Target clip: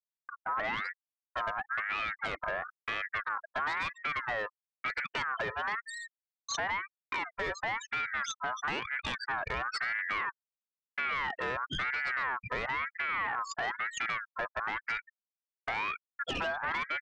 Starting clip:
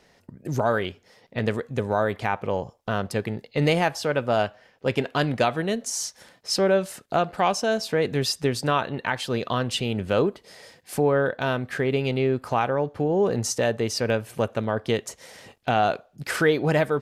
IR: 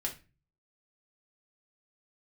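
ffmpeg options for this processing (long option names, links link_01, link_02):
-af "aeval=exprs='if(lt(val(0),0),0.708*val(0),val(0))':channel_layout=same,aemphasis=mode=reproduction:type=50fm,afftfilt=real='re*gte(hypot(re,im),0.0562)':imag='im*gte(hypot(re,im),0.0562)':win_size=1024:overlap=0.75,agate=range=-51dB:threshold=-51dB:ratio=16:detection=peak,highshelf=frequency=5300:gain=-4.5,bandreject=frequency=850:width=14,aecho=1:1:1.7:0.37,acompressor=threshold=-29dB:ratio=16,aresample=16000,asoftclip=type=tanh:threshold=-33.5dB,aresample=44100,aeval=exprs='val(0)*sin(2*PI*1500*n/s+1500*0.25/1*sin(2*PI*1*n/s))':channel_layout=same,volume=7dB"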